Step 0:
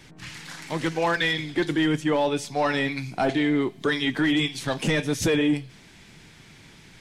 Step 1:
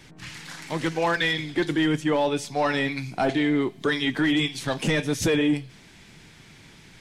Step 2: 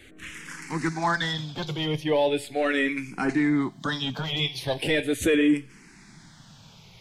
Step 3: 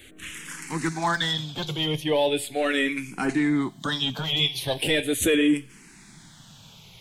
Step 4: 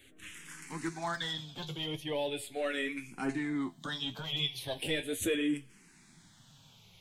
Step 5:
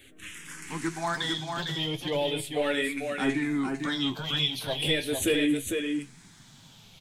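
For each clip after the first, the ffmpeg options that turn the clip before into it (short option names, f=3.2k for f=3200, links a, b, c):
-af anull
-filter_complex "[0:a]asplit=2[a][b];[b]afreqshift=-0.39[c];[a][c]amix=inputs=2:normalize=1,volume=2dB"
-af "aexciter=amount=2:drive=2.2:freq=2.8k"
-af "flanger=delay=7.3:depth=5.2:regen=53:speed=0.91:shape=sinusoidal,volume=-6.5dB"
-af "aecho=1:1:452:0.596,volume=5.5dB"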